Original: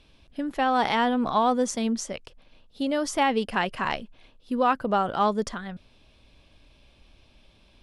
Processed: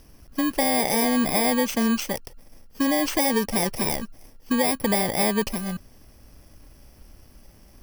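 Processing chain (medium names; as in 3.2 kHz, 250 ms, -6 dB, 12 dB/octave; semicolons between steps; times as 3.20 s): bit-reversed sample order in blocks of 32 samples; in parallel at -7.5 dB: hard clipper -27 dBFS, distortion -6 dB; on the sum: treble shelf 6 kHz -7 dB; compression, threshold -23 dBFS, peak gain reduction 4.5 dB; trim +5 dB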